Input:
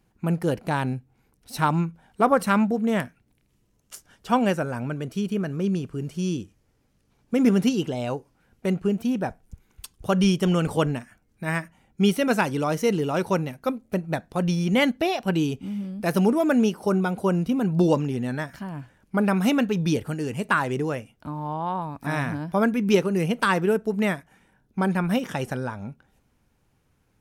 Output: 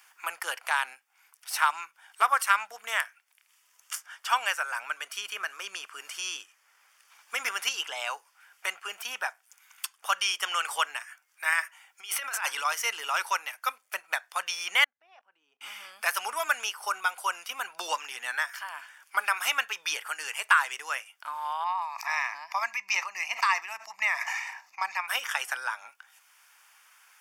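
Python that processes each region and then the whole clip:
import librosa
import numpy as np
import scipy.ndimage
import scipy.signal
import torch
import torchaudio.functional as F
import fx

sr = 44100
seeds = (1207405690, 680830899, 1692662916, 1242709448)

y = fx.chain(x, sr, fx.low_shelf(hz=220.0, db=-6.0),
    fx.over_compress(threshold_db=-28.0, ratio=-0.5), at=(11.52, 12.65))
y = fx.chain(y, sr, fx.bandpass_q(hz=110.0, q=0.6),
    fx.level_steps(step_db=23), at=(14.84, 15.61))
y = fx.chain(y, sr, fx.lowpass(hz=9800.0, slope=12),
    fx.fixed_phaser(hz=2200.0, stages=8),
    fx.sustainer(db_per_s=42.0), at=(21.64, 25.08))
y = scipy.signal.sosfilt(scipy.signal.butter(4, 1100.0, 'highpass', fs=sr, output='sos'), y)
y = fx.notch(y, sr, hz=4000.0, q=6.2)
y = fx.band_squash(y, sr, depth_pct=40)
y = y * 10.0 ** (6.0 / 20.0)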